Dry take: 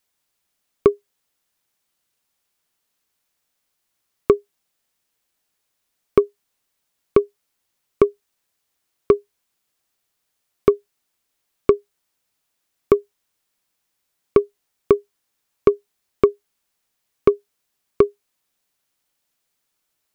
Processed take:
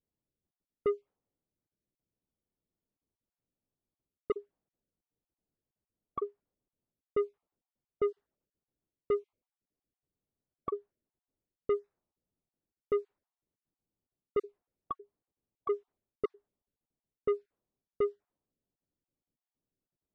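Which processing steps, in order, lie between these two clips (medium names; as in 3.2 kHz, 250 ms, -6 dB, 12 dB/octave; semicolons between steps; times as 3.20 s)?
random holes in the spectrogram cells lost 22%; reverse; compression 6:1, threshold -21 dBFS, peak gain reduction 13 dB; reverse; saturation -24 dBFS, distortion -10 dB; level-controlled noise filter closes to 340 Hz, open at -24.5 dBFS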